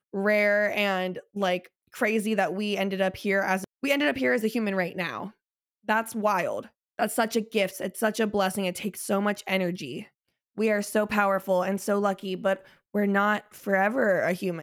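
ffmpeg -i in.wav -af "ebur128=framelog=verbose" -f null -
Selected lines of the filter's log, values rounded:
Integrated loudness:
  I:         -26.4 LUFS
  Threshold: -36.7 LUFS
Loudness range:
  LRA:         2.4 LU
  Threshold: -47.2 LUFS
  LRA low:   -28.4 LUFS
  LRA high:  -26.0 LUFS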